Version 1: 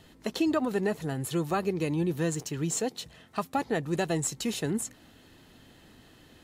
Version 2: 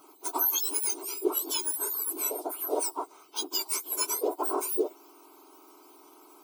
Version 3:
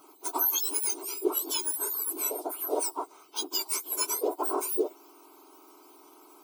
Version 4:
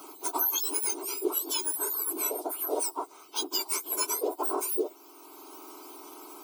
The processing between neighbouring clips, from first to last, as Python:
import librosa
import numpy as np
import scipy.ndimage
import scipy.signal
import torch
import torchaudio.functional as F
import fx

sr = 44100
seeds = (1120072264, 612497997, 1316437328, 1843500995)

y1 = fx.octave_mirror(x, sr, pivot_hz=2000.0)
y1 = fx.fixed_phaser(y1, sr, hz=360.0, stages=8)
y1 = y1 * librosa.db_to_amplitude(6.5)
y2 = y1
y3 = fx.band_squash(y2, sr, depth_pct=40)